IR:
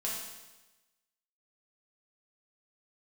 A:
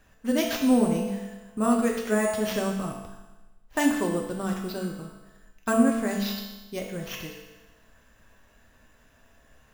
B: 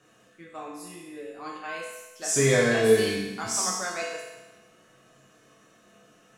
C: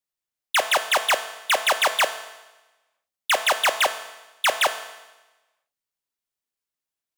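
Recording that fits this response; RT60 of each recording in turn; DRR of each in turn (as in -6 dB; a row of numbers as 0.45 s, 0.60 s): B; 1.1 s, 1.1 s, 1.1 s; -0.5 dB, -5.0 dB, 8.5 dB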